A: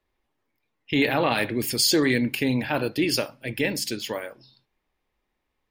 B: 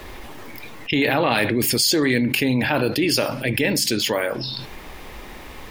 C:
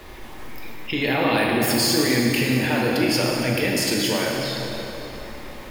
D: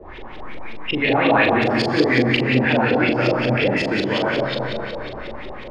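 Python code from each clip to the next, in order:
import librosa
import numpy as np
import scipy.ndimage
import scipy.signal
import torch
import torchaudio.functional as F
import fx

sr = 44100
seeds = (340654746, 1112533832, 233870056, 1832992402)

y1 = fx.env_flatten(x, sr, amount_pct=70)
y2 = fx.rev_plate(y1, sr, seeds[0], rt60_s=3.8, hf_ratio=0.7, predelay_ms=0, drr_db=-2.5)
y2 = y2 * librosa.db_to_amplitude(-5.0)
y3 = scipy.ndimage.median_filter(y2, 3, mode='constant')
y3 = fx.filter_lfo_lowpass(y3, sr, shape='saw_up', hz=5.5, low_hz=420.0, high_hz=3900.0, q=3.0)
y3 = fx.doubler(y3, sr, ms=40.0, db=-4.5)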